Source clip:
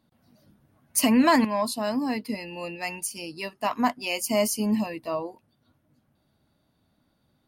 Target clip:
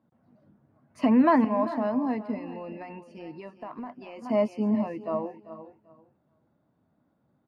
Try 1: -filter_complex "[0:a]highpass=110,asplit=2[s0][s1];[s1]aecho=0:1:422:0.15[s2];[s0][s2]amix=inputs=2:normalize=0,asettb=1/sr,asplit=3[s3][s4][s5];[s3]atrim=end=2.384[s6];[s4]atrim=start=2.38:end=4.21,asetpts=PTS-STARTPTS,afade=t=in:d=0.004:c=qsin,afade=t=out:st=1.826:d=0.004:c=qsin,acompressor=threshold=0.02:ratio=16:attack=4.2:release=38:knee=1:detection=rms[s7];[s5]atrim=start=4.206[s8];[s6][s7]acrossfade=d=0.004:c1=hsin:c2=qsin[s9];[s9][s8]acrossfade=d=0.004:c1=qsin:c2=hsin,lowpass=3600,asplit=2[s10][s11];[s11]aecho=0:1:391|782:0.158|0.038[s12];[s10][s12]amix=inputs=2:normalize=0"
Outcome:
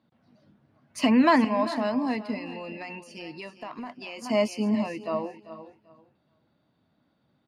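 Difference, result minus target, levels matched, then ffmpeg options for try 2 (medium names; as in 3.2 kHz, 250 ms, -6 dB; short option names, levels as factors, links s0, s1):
4 kHz band +13.5 dB
-filter_complex "[0:a]highpass=110,asplit=2[s0][s1];[s1]aecho=0:1:422:0.15[s2];[s0][s2]amix=inputs=2:normalize=0,asettb=1/sr,asplit=3[s3][s4][s5];[s3]atrim=end=2.384[s6];[s4]atrim=start=2.38:end=4.21,asetpts=PTS-STARTPTS,afade=t=in:d=0.004:c=qsin,afade=t=out:st=1.826:d=0.004:c=qsin,acompressor=threshold=0.02:ratio=16:attack=4.2:release=38:knee=1:detection=rms[s7];[s5]atrim=start=4.206[s8];[s6][s7]acrossfade=d=0.004:c1=hsin:c2=qsin[s9];[s9][s8]acrossfade=d=0.004:c1=qsin:c2=hsin,lowpass=1300,asplit=2[s10][s11];[s11]aecho=0:1:391|782:0.158|0.038[s12];[s10][s12]amix=inputs=2:normalize=0"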